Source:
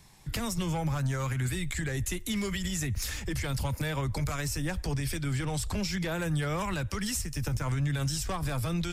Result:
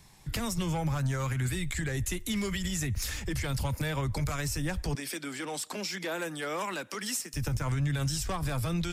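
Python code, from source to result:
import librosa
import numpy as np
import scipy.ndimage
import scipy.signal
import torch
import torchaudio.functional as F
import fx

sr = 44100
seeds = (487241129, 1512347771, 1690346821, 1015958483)

y = fx.highpass(x, sr, hz=250.0, slope=24, at=(4.95, 7.34))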